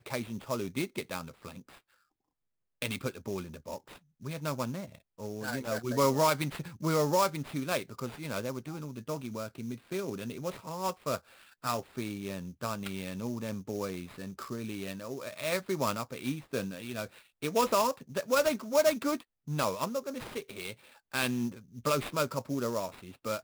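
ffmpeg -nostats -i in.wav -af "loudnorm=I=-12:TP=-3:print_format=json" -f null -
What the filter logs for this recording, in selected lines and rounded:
"input_i" : "-33.6",
"input_tp" : "-14.0",
"input_lra" : "8.4",
"input_thresh" : "-43.9",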